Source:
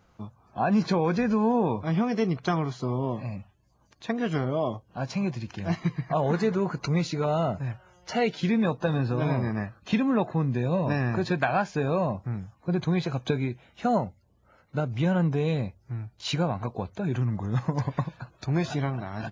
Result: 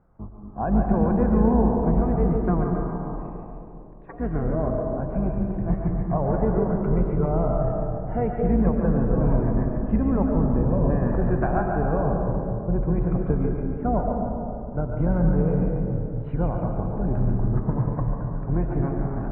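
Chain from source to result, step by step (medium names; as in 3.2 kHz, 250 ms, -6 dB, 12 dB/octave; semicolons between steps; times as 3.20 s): octave divider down 2 oct, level 0 dB; Bessel low-pass 980 Hz, order 6; 2.80–4.20 s: spectral gate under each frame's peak -15 dB weak; two-band feedback delay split 440 Hz, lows 230 ms, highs 142 ms, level -6 dB; reverberation RT60 2.6 s, pre-delay 70 ms, DRR 3.5 dB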